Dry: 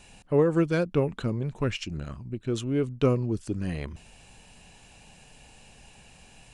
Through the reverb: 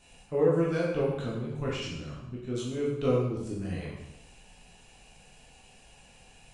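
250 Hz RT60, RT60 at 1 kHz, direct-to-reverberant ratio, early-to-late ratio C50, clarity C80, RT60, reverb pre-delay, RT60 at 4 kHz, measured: 0.95 s, 0.90 s, -6.0 dB, 1.5 dB, 4.0 dB, 0.90 s, 7 ms, 0.85 s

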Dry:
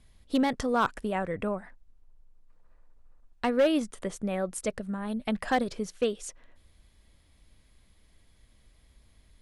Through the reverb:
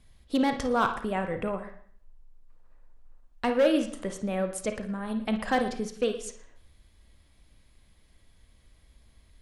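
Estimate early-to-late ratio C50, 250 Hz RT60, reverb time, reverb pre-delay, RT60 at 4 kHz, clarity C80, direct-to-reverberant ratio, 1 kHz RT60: 7.5 dB, 0.60 s, 0.55 s, 34 ms, 0.55 s, 13.0 dB, 6.0 dB, 0.55 s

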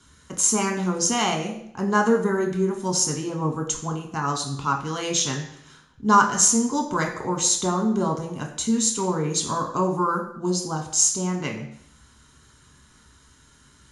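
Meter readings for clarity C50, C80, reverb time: 8.0 dB, 10.5 dB, 0.70 s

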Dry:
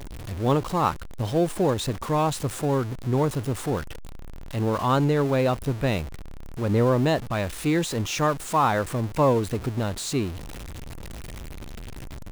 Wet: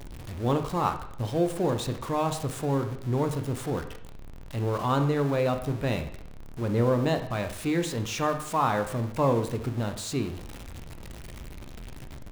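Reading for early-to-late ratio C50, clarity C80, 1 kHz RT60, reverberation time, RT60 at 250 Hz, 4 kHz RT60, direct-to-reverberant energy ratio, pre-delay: 10.0 dB, 12.5 dB, 0.70 s, 0.70 s, 0.75 s, 0.65 s, 7.0 dB, 7 ms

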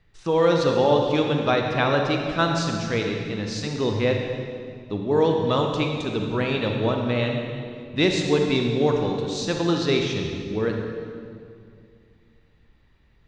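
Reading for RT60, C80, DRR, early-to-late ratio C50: 2.3 s, 4.0 dB, 2.0 dB, 2.5 dB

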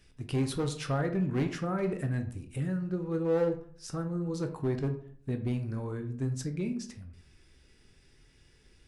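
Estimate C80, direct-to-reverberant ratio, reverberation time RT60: 15.0 dB, 6.0 dB, 0.55 s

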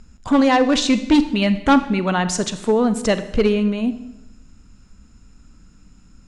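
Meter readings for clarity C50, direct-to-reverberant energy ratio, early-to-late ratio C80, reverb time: 13.0 dB, 11.5 dB, 15.0 dB, 0.90 s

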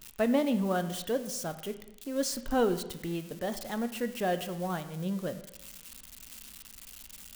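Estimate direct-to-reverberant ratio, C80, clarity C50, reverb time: 9.5 dB, 14.0 dB, 12.5 dB, 0.95 s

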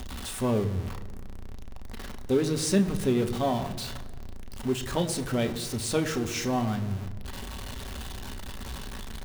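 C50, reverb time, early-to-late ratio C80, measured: 13.5 dB, 1.5 s, 14.5 dB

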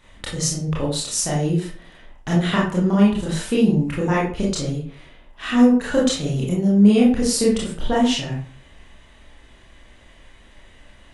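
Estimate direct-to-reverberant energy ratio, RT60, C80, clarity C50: -5.5 dB, 0.45 s, 9.0 dB, 3.0 dB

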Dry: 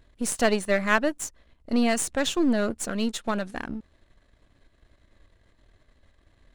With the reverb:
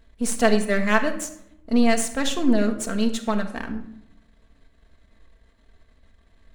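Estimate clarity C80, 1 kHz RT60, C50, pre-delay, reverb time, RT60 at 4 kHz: 13.5 dB, 0.65 s, 10.5 dB, 4 ms, 0.70 s, 0.45 s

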